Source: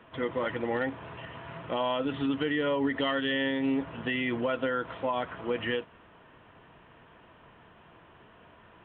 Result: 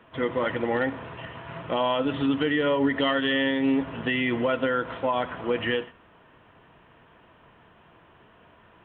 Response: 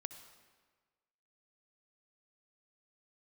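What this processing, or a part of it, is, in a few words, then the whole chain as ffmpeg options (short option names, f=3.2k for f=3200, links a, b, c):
keyed gated reverb: -filter_complex "[0:a]asplit=3[a][b][c];[1:a]atrim=start_sample=2205[d];[b][d]afir=irnorm=-1:irlink=0[e];[c]apad=whole_len=390204[f];[e][f]sidechaingate=range=-33dB:threshold=-42dB:ratio=16:detection=peak,volume=0.5dB[g];[a][g]amix=inputs=2:normalize=0"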